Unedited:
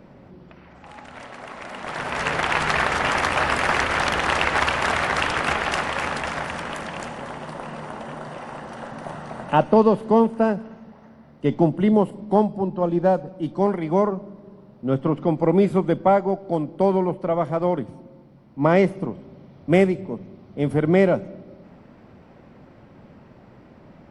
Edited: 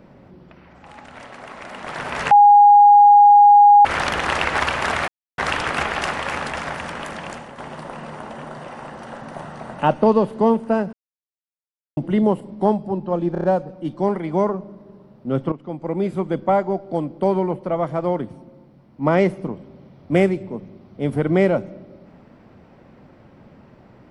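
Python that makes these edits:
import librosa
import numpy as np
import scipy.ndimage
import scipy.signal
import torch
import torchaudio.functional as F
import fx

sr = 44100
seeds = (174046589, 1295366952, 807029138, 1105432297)

y = fx.edit(x, sr, fx.bleep(start_s=2.31, length_s=1.54, hz=821.0, db=-6.0),
    fx.insert_silence(at_s=5.08, length_s=0.3),
    fx.fade_out_to(start_s=6.97, length_s=0.31, floor_db=-7.5),
    fx.silence(start_s=10.63, length_s=1.04),
    fx.stutter(start_s=13.02, slice_s=0.03, count=5),
    fx.fade_in_from(start_s=15.1, length_s=1.15, floor_db=-13.5), tone=tone)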